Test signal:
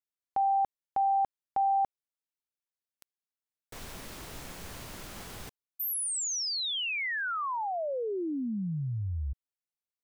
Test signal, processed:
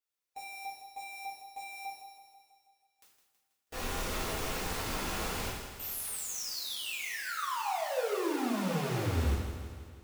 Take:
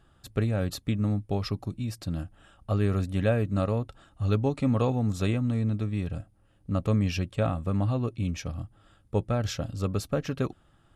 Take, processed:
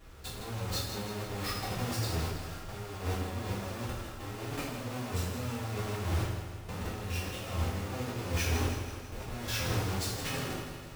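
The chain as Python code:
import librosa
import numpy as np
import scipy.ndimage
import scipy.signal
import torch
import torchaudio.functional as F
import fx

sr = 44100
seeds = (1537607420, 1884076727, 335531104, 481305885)

y = fx.halfwave_hold(x, sr)
y = fx.low_shelf(y, sr, hz=270.0, db=-4.5)
y = fx.over_compress(y, sr, threshold_db=-35.0, ratio=-1.0)
y = fx.hpss(y, sr, part='percussive', gain_db=-6)
y = fx.echo_feedback(y, sr, ms=162, feedback_pct=59, wet_db=-9.5)
y = fx.rev_double_slope(y, sr, seeds[0], early_s=0.7, late_s=2.1, knee_db=-18, drr_db=-9.5)
y = F.gain(torch.from_numpy(y), -8.0).numpy()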